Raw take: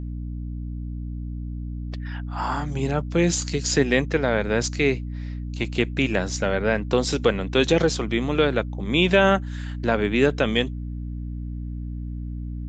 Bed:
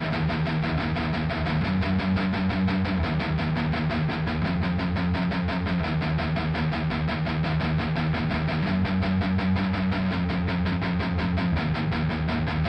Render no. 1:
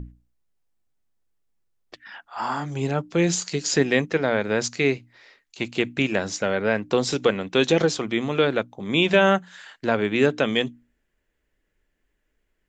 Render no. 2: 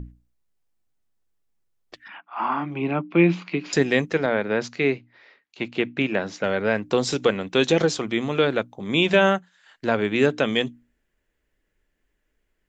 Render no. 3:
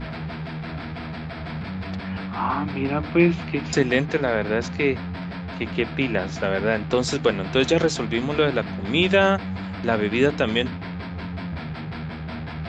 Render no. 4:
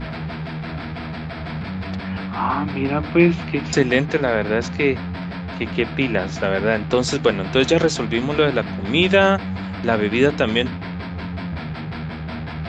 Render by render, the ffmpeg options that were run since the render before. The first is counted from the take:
ffmpeg -i in.wav -af "bandreject=frequency=60:width_type=h:width=6,bandreject=frequency=120:width_type=h:width=6,bandreject=frequency=180:width_type=h:width=6,bandreject=frequency=240:width_type=h:width=6,bandreject=frequency=300:width_type=h:width=6" out.wav
ffmpeg -i in.wav -filter_complex "[0:a]asettb=1/sr,asplit=3[link_01][link_02][link_03];[link_01]atrim=end=2.084[link_04];[link_02]atrim=start=2.08:end=3.73,asetpts=PTS-STARTPTS,afade=type=in:duration=0.004:curve=qsin,afade=type=out:start_time=1.646:duration=0.004:curve=qsin,highpass=frequency=160:width=0.5412,highpass=frequency=160:width=1.3066,equalizer=frequency=180:width_type=q:width=4:gain=5,equalizer=frequency=320:width_type=q:width=4:gain=8,equalizer=frequency=470:width_type=q:width=4:gain=-6,equalizer=frequency=1100:width_type=q:width=4:gain=6,equalizer=frequency=1700:width_type=q:width=4:gain=-5,equalizer=frequency=2400:width_type=q:width=4:gain=9,lowpass=frequency=2900:width=0.5412,lowpass=frequency=2900:width=1.3066[link_05];[link_03]atrim=start=3.726[link_06];[link_04][link_05]acrossfade=duration=0.004:curve1=hsin:curve2=qsin[link_07];[link_07][link_06]acrossfade=duration=0.004:curve1=qsin:curve2=hsin,asettb=1/sr,asplit=3[link_08][link_09][link_10];[link_08]atrim=end=4.264[link_11];[link_09]atrim=start=4.26:end=6.44,asetpts=PTS-STARTPTS,afade=type=in:duration=0.004:curve=qsin,afade=type=out:start_time=2.176:duration=0.004:curve=qsin,highpass=130,lowpass=3300[link_12];[link_10]atrim=start=6.436[link_13];[link_11][link_12]acrossfade=duration=0.004:curve1=hsin:curve2=qsin[link_14];[link_14][link_13]acrossfade=duration=0.004:curve1=qsin:curve2=hsin,asplit=3[link_15][link_16][link_17];[link_15]atrim=end=9.51,asetpts=PTS-STARTPTS,afade=type=out:start_time=9.26:duration=0.25:silence=0.149624[link_18];[link_16]atrim=start=9.51:end=9.62,asetpts=PTS-STARTPTS,volume=-16.5dB[link_19];[link_17]atrim=start=9.62,asetpts=PTS-STARTPTS,afade=type=in:duration=0.25:silence=0.149624[link_20];[link_18][link_19][link_20]concat=n=3:v=0:a=1" out.wav
ffmpeg -i in.wav -i bed.wav -filter_complex "[1:a]volume=-6.5dB[link_01];[0:a][link_01]amix=inputs=2:normalize=0" out.wav
ffmpeg -i in.wav -af "volume=3dB" out.wav

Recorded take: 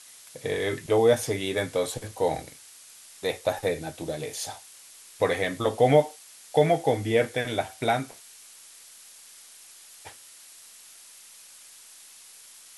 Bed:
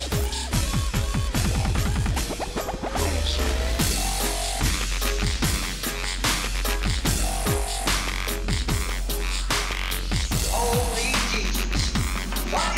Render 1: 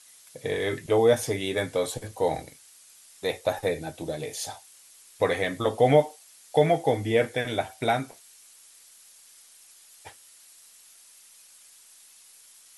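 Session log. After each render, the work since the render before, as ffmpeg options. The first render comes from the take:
ffmpeg -i in.wav -af "afftdn=noise_reduction=6:noise_floor=-50" out.wav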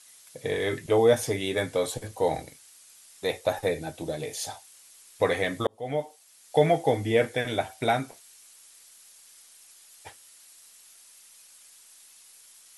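ffmpeg -i in.wav -filter_complex "[0:a]asplit=2[link_01][link_02];[link_01]atrim=end=5.67,asetpts=PTS-STARTPTS,afade=type=out:start_time=5.666:duration=0.004:curve=hsin[link_03];[link_02]atrim=start=5.67,asetpts=PTS-STARTPTS,afade=type=in:duration=0.96[link_04];[link_03][link_04]concat=n=2:v=0:a=1" out.wav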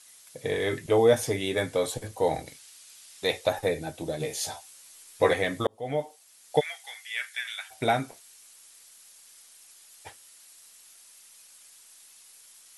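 ffmpeg -i in.wav -filter_complex "[0:a]asettb=1/sr,asplit=3[link_01][link_02][link_03];[link_01]atrim=end=2.464[link_04];[link_02]atrim=start=2.46:end=3.49,asetpts=PTS-STARTPTS,afade=type=in:duration=0.004:curve=qsin,afade=type=out:start_time=1.026:duration=0.004:curve=qsin,equalizer=frequency=3600:width=0.63:gain=5.5[link_05];[link_03]atrim=start=3.486[link_06];[link_04][link_05]acrossfade=duration=0.004:curve1=hsin:curve2=qsin[link_07];[link_07][link_06]acrossfade=duration=0.004:curve1=qsin:curve2=hsin,asettb=1/sr,asplit=3[link_08][link_09][link_10];[link_08]atrim=end=4.194[link_11];[link_09]atrim=start=4.19:end=5.34,asetpts=PTS-STARTPTS,afade=type=in:duration=0.004:curve=qsin,afade=type=out:start_time=1.146:duration=0.004:curve=qsin,asplit=2[link_12][link_13];[link_13]adelay=13,volume=-2dB[link_14];[link_12][link_14]amix=inputs=2:normalize=0,atrim=end_sample=50715[link_15];[link_10]atrim=start=5.336[link_16];[link_11][link_15]acrossfade=duration=0.004:curve1=hsin:curve2=qsin[link_17];[link_17][link_16]acrossfade=duration=0.004:curve1=qsin:curve2=hsin,asplit=3[link_18][link_19][link_20];[link_18]afade=type=out:start_time=6.59:duration=0.02[link_21];[link_19]highpass=frequency=1500:width=0.5412,highpass=frequency=1500:width=1.3066,afade=type=in:start_time=6.59:duration=0.02,afade=type=out:start_time=7.7:duration=0.02[link_22];[link_20]afade=type=in:start_time=7.7:duration=0.02[link_23];[link_21][link_22][link_23]amix=inputs=3:normalize=0" out.wav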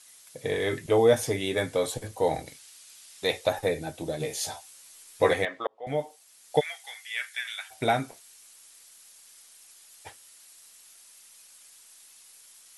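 ffmpeg -i in.wav -filter_complex "[0:a]asettb=1/sr,asplit=3[link_01][link_02][link_03];[link_01]atrim=end=5.454[link_04];[link_02]atrim=start=5.45:end=5.87,asetpts=PTS-STARTPTS,afade=type=in:duration=0.004:curve=qsin,afade=type=out:start_time=0.416:duration=0.004:curve=qsin,highpass=590,lowpass=2300[link_05];[link_03]atrim=start=5.866[link_06];[link_04][link_05]acrossfade=duration=0.004:curve1=hsin:curve2=qsin[link_07];[link_07][link_06]acrossfade=duration=0.004:curve1=qsin:curve2=hsin" out.wav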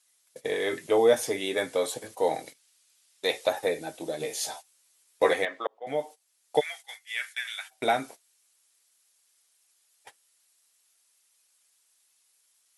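ffmpeg -i in.wav -af "agate=range=-15dB:threshold=-42dB:ratio=16:detection=peak,highpass=270" out.wav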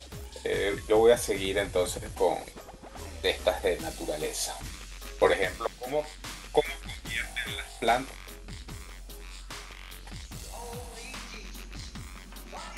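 ffmpeg -i in.wav -i bed.wav -filter_complex "[1:a]volume=-17.5dB[link_01];[0:a][link_01]amix=inputs=2:normalize=0" out.wav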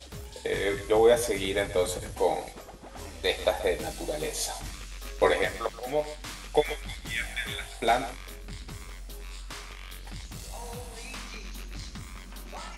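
ffmpeg -i in.wav -filter_complex "[0:a]asplit=2[link_01][link_02];[link_02]adelay=20,volume=-11dB[link_03];[link_01][link_03]amix=inputs=2:normalize=0,aecho=1:1:131:0.188" out.wav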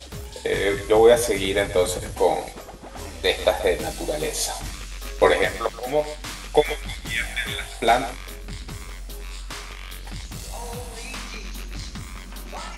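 ffmpeg -i in.wav -af "volume=6dB" out.wav

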